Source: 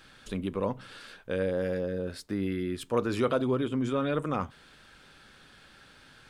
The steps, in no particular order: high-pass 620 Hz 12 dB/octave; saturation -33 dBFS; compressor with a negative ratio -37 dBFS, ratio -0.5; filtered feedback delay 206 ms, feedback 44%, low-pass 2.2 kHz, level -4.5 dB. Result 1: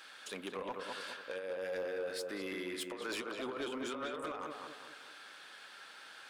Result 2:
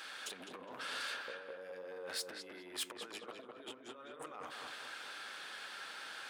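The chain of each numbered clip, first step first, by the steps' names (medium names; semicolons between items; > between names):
high-pass > compressor with a negative ratio > filtered feedback delay > saturation; compressor with a negative ratio > filtered feedback delay > saturation > high-pass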